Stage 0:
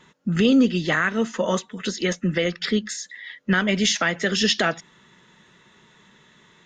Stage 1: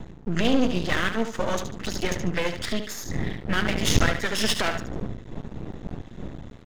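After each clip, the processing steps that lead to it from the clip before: wind noise 200 Hz -29 dBFS; feedback delay 73 ms, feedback 31%, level -8 dB; half-wave rectifier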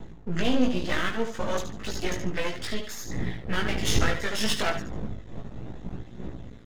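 chorus voices 2, 0.32 Hz, delay 18 ms, depth 1.8 ms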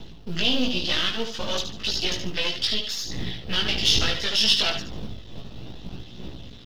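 companding laws mixed up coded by mu; high-order bell 3.9 kHz +15.5 dB 1.3 oct; in parallel at -2 dB: peak limiter -10.5 dBFS, peak gain reduction 9 dB; on the sum: trim -7 dB

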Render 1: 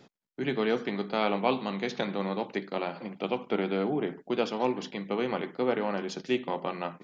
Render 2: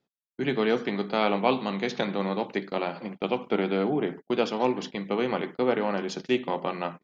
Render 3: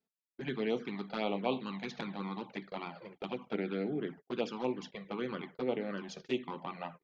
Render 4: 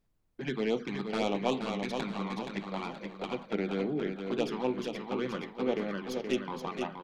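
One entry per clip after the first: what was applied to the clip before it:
gate -41 dBFS, range -26 dB; trim +3 dB
touch-sensitive flanger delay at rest 4.5 ms, full sweep at -19.5 dBFS; trim -7.5 dB
tracing distortion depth 0.05 ms; added noise brown -77 dBFS; feedback delay 474 ms, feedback 40%, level -6 dB; trim +3 dB

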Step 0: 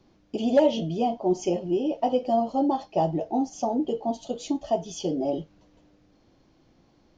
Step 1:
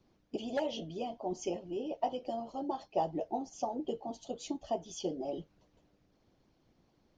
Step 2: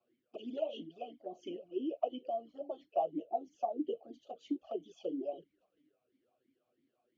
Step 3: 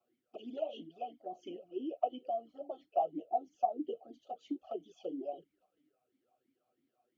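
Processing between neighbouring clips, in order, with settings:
harmonic-percussive split harmonic -11 dB; trim -5 dB
touch-sensitive flanger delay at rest 8.8 ms, full sweep at -34 dBFS; talking filter a-i 3 Hz; trim +7 dB
small resonant body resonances 750/1300 Hz, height 10 dB; trim -2.5 dB

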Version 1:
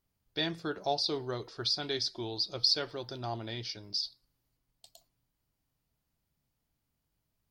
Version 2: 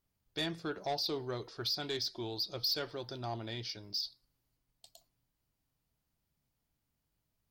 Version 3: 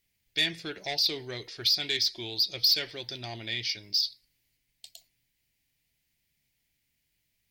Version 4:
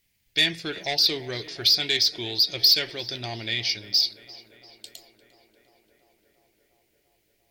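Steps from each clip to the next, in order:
saturation -26 dBFS, distortion -12 dB; trim -1.5 dB
resonant high shelf 1.6 kHz +9 dB, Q 3
tape echo 347 ms, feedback 84%, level -17.5 dB, low-pass 2.9 kHz; trim +5.5 dB

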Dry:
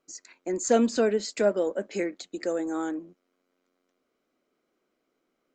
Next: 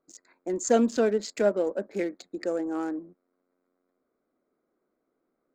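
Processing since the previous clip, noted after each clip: local Wiener filter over 15 samples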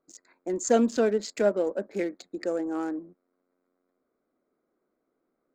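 no audible change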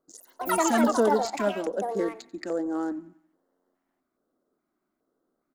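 ever faster or slower copies 81 ms, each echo +6 st, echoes 3; feedback delay 90 ms, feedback 50%, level -21.5 dB; LFO notch square 1.2 Hz 480–2400 Hz; trim +1 dB

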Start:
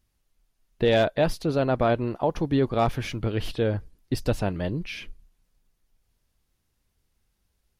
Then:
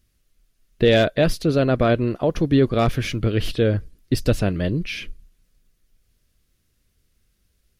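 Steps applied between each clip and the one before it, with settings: peaking EQ 870 Hz -12.5 dB 0.57 oct; trim +6.5 dB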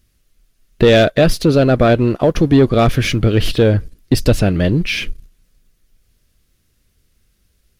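waveshaping leveller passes 1; in parallel at +0.5 dB: compression, threshold -24 dBFS, peak gain reduction 13 dB; on the sum: trim +1.5 dB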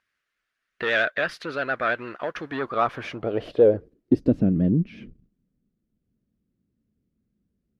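vibrato 8.9 Hz 50 cents; band-pass sweep 1.6 kHz -> 220 Hz, 2.44–4.52 s

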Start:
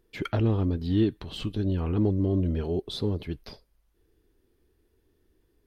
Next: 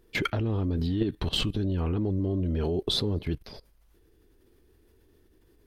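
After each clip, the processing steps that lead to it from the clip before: in parallel at 0 dB: peak limiter -23 dBFS, peak gain reduction 9 dB; on the sum: level held to a coarse grid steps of 17 dB; trim +7 dB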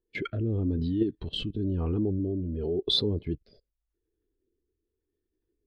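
bass shelf 220 Hz -7 dB; rotary cabinet horn 0.9 Hz; spectral contrast expander 1.5:1; trim +4 dB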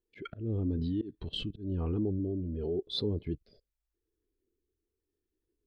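slow attack 164 ms; trim -3.5 dB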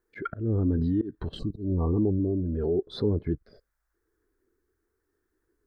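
time-frequency box 1.39–2.18 s, 1.2–3.7 kHz -27 dB; resonant high shelf 2.1 kHz -10 dB, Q 3; tape noise reduction on one side only encoder only; trim +6.5 dB

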